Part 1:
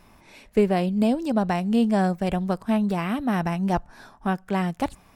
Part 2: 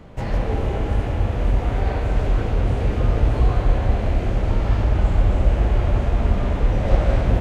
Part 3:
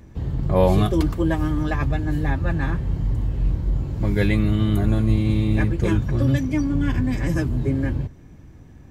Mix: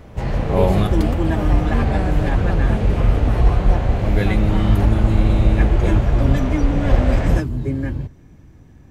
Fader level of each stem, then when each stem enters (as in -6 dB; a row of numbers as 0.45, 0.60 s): -6.0, +1.0, -0.5 dB; 0.00, 0.00, 0.00 s